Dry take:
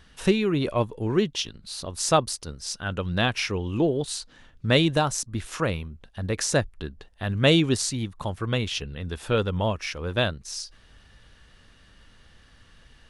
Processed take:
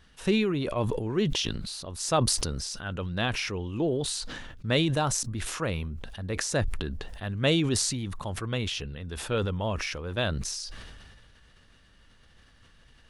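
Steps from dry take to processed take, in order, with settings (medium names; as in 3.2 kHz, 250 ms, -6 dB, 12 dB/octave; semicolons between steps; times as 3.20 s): decay stretcher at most 28 dB/s; trim -5.5 dB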